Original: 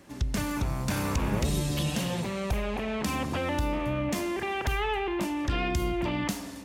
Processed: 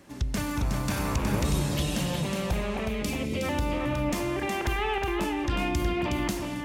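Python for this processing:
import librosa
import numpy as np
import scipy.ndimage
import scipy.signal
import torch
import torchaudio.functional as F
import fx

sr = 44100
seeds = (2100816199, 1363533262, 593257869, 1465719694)

p1 = fx.spec_box(x, sr, start_s=2.89, length_s=0.54, low_hz=620.0, high_hz=1900.0, gain_db=-15)
y = p1 + fx.echo_single(p1, sr, ms=366, db=-5.0, dry=0)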